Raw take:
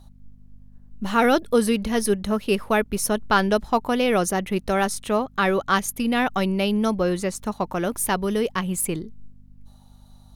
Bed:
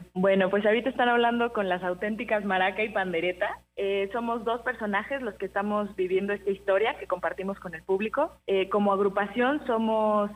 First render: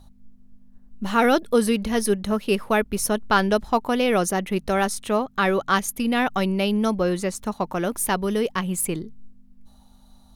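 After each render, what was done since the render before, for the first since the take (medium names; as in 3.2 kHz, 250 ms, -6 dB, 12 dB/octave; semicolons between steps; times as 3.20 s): de-hum 50 Hz, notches 3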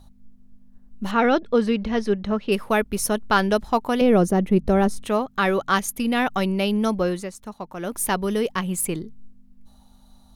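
1.11–2.52 s: distance through air 160 m; 4.01–5.06 s: tilt shelf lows +8.5 dB, about 760 Hz; 7.04–8.02 s: dip -8.5 dB, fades 0.26 s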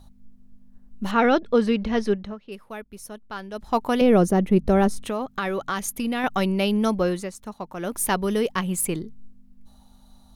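2.09–3.80 s: dip -16 dB, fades 0.27 s; 4.91–6.24 s: compression, threshold -22 dBFS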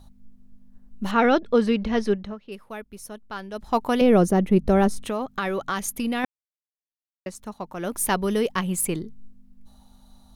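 6.25–7.26 s: mute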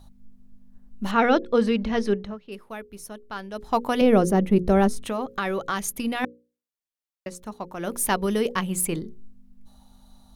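hum notches 60/120/180/240/300/360/420/480/540 Hz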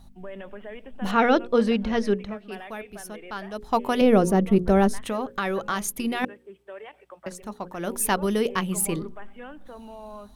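add bed -17 dB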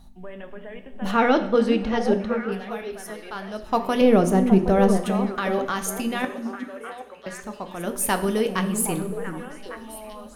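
repeats whose band climbs or falls 384 ms, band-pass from 230 Hz, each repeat 1.4 oct, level -3.5 dB; two-slope reverb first 0.6 s, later 2.9 s, from -18 dB, DRR 8 dB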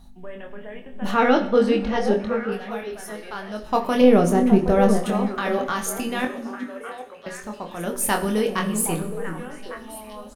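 doubling 24 ms -5.5 dB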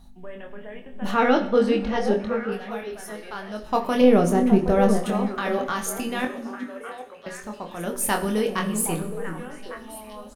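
trim -1.5 dB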